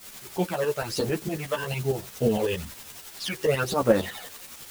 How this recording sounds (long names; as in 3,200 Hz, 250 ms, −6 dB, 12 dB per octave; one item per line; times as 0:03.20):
phaser sweep stages 12, 1.1 Hz, lowest notch 220–4,000 Hz
a quantiser's noise floor 8 bits, dither triangular
tremolo saw up 11 Hz, depth 65%
a shimmering, thickened sound